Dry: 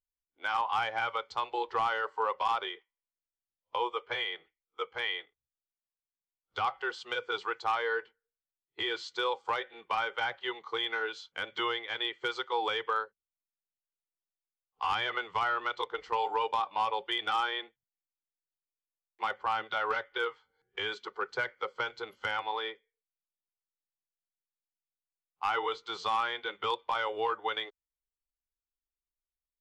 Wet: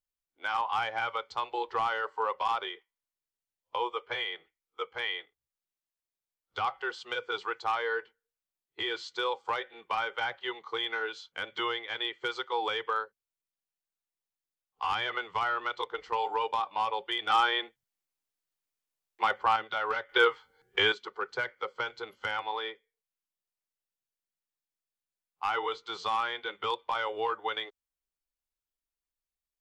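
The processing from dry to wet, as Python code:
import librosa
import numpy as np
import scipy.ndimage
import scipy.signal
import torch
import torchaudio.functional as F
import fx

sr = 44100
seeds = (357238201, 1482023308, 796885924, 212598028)

y = fx.edit(x, sr, fx.clip_gain(start_s=17.3, length_s=2.26, db=5.5),
    fx.clip_gain(start_s=20.09, length_s=0.83, db=9.5), tone=tone)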